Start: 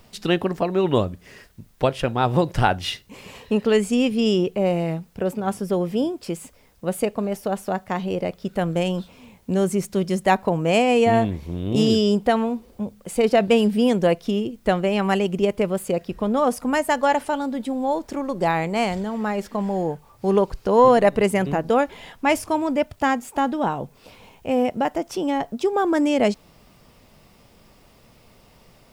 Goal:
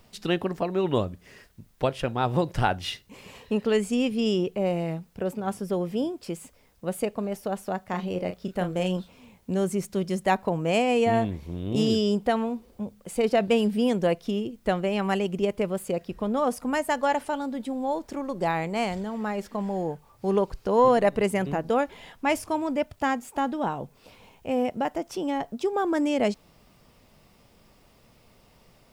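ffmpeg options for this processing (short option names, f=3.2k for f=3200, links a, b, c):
-filter_complex "[0:a]asettb=1/sr,asplit=3[a][b][c];[a]atrim=end=7.874[d];[b]atrim=start=7.87:end=8.97,asetpts=PTS-STARTPTS,afade=t=in:d=0.004:c=qsin,afade=t=out:st=1.096:d=0.004:c=qsin,asplit=2[e][f];[f]adelay=33,volume=-8dB[g];[e][g]amix=inputs=2:normalize=0,atrim=end_sample=48510[h];[c]atrim=start=8.966[i];[d][h]acrossfade=d=0.004:c1=hsin:c2=qsin[j];[j][i]acrossfade=d=0.004:c1=qsin:c2=hsin,volume=-5dB"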